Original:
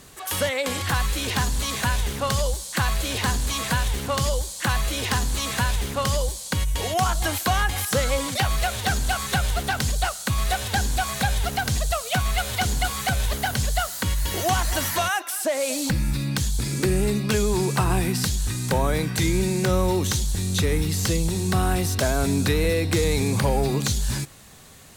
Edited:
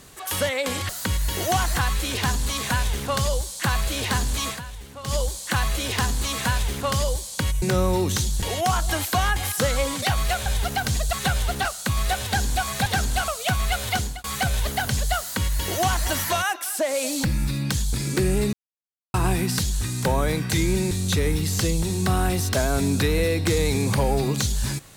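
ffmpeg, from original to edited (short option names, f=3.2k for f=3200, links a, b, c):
-filter_complex "[0:a]asplit=16[a][b][c][d][e][f][g][h][i][j][k][l][m][n][o][p];[a]atrim=end=0.892[q];[b]atrim=start=13.858:end=14.732[r];[c]atrim=start=0.888:end=3.73,asetpts=PTS-STARTPTS,afade=t=out:st=2.722:d=0.12:silence=0.211349[s];[d]atrim=start=3.73:end=4.16,asetpts=PTS-STARTPTS,volume=-13.5dB[t];[e]atrim=start=4.16:end=6.752,asetpts=PTS-STARTPTS,afade=t=in:d=0.12:silence=0.211349[u];[f]atrim=start=19.568:end=20.372[v];[g]atrim=start=6.748:end=8.792[w];[h]atrim=start=11.268:end=11.942[x];[i]atrim=start=9.208:end=9.732[y];[j]atrim=start=10.058:end=11.272[z];[k]atrim=start=8.788:end=9.212[aa];[l]atrim=start=11.938:end=12.9,asetpts=PTS-STARTPTS,afade=t=out:st=0.672:d=0.29[ab];[m]atrim=start=12.9:end=17.19,asetpts=PTS-STARTPTS,afade=t=in:d=0.004:c=hsin,afade=t=out:st=4.286:d=0.004:c=hsin[ac];[n]atrim=start=17.19:end=17.8,asetpts=PTS-STARTPTS,volume=0[ad];[o]atrim=start=17.8:end=19.572,asetpts=PTS-STARTPTS,afade=t=in:d=0.004:c=hsin[ae];[p]atrim=start=20.368[af];[q][r]acrossfade=d=0.004:c1=hsin:c2=hsin[ag];[s][t][u]concat=n=3:v=0:a=1[ah];[ag][ah]acrossfade=d=0.004:c1=hsin:c2=hsin[ai];[ai][v]acrossfade=d=0.004:c1=hsin:c2=hsin[aj];[aj][w]acrossfade=d=0.004:c1=hsin:c2=hsin[ak];[ak][x]acrossfade=d=0.004:c1=hsin:c2=hsin[al];[al][y]acrossfade=d=0.004:c1=hsin:c2=hsin[am];[am][z]acrossfade=d=0.004:c1=hsin:c2=hsin[an];[an][aa]acrossfade=d=0.004:c1=hsin:c2=hsin[ao];[ab][ac][ad][ae]concat=n=4:v=0:a=1[ap];[ao][ap]acrossfade=d=0.004:c1=hsin:c2=hsin[aq];[aq][af]acrossfade=d=0.004:c1=hsin:c2=hsin"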